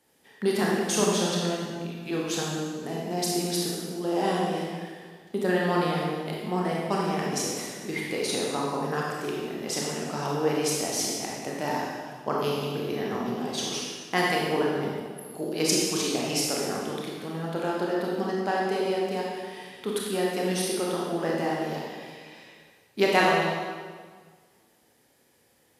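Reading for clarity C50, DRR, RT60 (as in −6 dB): −1.0 dB, −4.0 dB, 1.7 s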